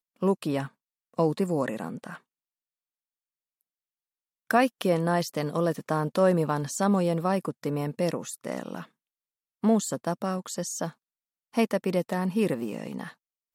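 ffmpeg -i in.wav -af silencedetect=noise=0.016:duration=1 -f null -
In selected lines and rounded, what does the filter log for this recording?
silence_start: 2.16
silence_end: 4.51 | silence_duration: 2.35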